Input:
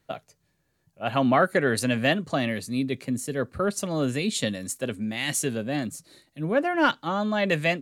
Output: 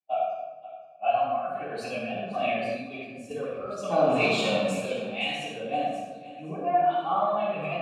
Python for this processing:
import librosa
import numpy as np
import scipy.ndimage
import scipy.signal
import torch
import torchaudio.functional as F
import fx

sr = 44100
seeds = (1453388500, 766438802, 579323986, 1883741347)

y = fx.bin_expand(x, sr, power=1.5)
y = fx.highpass(y, sr, hz=200.0, slope=6)
y = fx.over_compress(y, sr, threshold_db=-34.0, ratio=-1.0)
y = fx.leveller(y, sr, passes=3, at=(3.9, 4.77))
y = fx.level_steps(y, sr, step_db=11, at=(5.45, 5.92))
y = fx.vowel_filter(y, sr, vowel='a')
y = fx.echo_feedback(y, sr, ms=522, feedback_pct=29, wet_db=-16.0)
y = fx.room_shoebox(y, sr, seeds[0], volume_m3=680.0, walls='mixed', distance_m=9.0)
y = fx.band_widen(y, sr, depth_pct=100, at=(2.64, 3.31))
y = y * 10.0 ** (3.0 / 20.0)